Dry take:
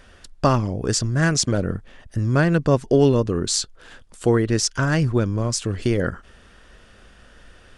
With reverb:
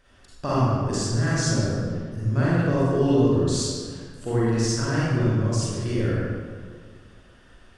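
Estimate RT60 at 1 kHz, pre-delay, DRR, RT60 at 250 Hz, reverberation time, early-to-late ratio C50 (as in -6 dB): 1.7 s, 35 ms, -8.5 dB, 2.0 s, 1.8 s, -5.0 dB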